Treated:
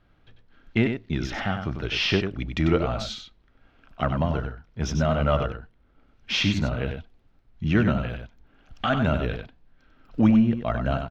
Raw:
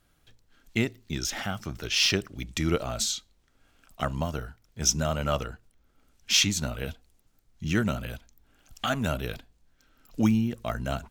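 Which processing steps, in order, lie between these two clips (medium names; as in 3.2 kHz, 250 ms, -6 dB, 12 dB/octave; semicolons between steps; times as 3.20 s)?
in parallel at -4.5 dB: hard clipper -22 dBFS, distortion -10 dB; on the sum: distance through air 310 m; delay 95 ms -7 dB; trim +2 dB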